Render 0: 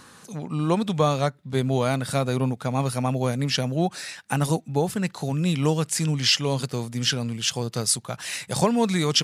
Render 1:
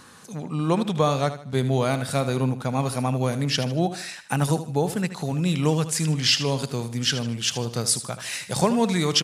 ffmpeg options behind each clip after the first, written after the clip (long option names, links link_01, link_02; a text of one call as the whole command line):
ffmpeg -i in.wav -af "aecho=1:1:77|154|231|308:0.251|0.0904|0.0326|0.0117" out.wav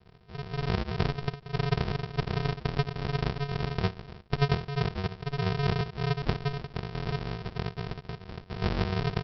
ffmpeg -i in.wav -af "aresample=11025,acrusher=samples=39:mix=1:aa=0.000001,aresample=44100,lowshelf=frequency=64:gain=-12,volume=-3dB" out.wav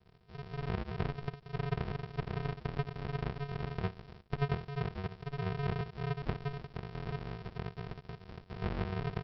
ffmpeg -i in.wav -filter_complex "[0:a]acrossover=split=3100[link_01][link_02];[link_02]acompressor=threshold=-51dB:ratio=4:attack=1:release=60[link_03];[link_01][link_03]amix=inputs=2:normalize=0,volume=-7dB" out.wav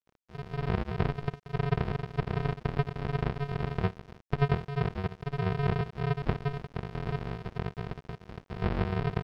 ffmpeg -i in.wav -af "aeval=exprs='sgn(val(0))*max(abs(val(0))-0.00188,0)':channel_layout=same,highshelf=frequency=4600:gain=-7.5,volume=7dB" out.wav